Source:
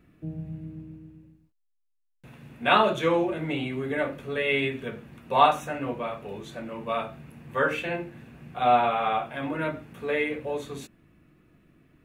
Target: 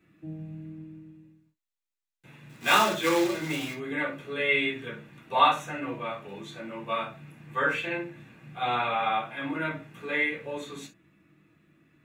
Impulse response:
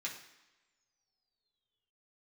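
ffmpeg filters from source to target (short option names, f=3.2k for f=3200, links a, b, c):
-filter_complex "[0:a]asettb=1/sr,asplit=3[a][b][c];[a]atrim=end=2.494[d];[b]atrim=start=2.49:end=3.74,asetpts=PTS-STARTPTS,afade=t=in:d=0.004:c=qsin,afade=t=out:st=1.246:d=0.004:c=qsin,acrusher=bits=2:mode=log:mix=0:aa=0.000001[e];[c]atrim=start=3.736[f];[d][e]acrossfade=d=0.004:c1=hsin:c2=qsin[g];[g][f]acrossfade=d=0.004:c1=qsin:c2=hsin[h];[1:a]atrim=start_sample=2205,atrim=end_sample=3087[i];[h][i]afir=irnorm=-1:irlink=0"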